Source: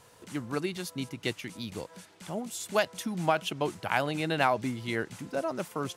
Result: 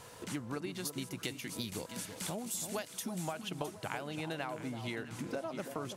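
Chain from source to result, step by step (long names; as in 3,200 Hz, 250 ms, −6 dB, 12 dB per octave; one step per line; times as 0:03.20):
0:00.85–0:03.28: high-shelf EQ 5,800 Hz +11.5 dB
downward compressor 12 to 1, threshold −41 dBFS, peak gain reduction 21.5 dB
delay that swaps between a low-pass and a high-pass 331 ms, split 1,100 Hz, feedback 64%, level −8 dB
level +5 dB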